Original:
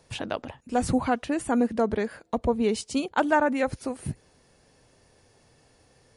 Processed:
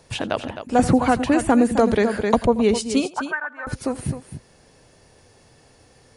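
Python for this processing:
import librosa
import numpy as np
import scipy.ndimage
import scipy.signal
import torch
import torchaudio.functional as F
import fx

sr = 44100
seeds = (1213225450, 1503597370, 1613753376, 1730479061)

y = fx.auto_wah(x, sr, base_hz=570.0, top_hz=1800.0, q=6.7, full_db=-16.5, direction='up', at=(3.08, 3.67))
y = fx.echo_multitap(y, sr, ms=(85, 260), db=(-19.5, -10.5))
y = fx.band_squash(y, sr, depth_pct=100, at=(0.79, 2.46))
y = y * 10.0 ** (6.5 / 20.0)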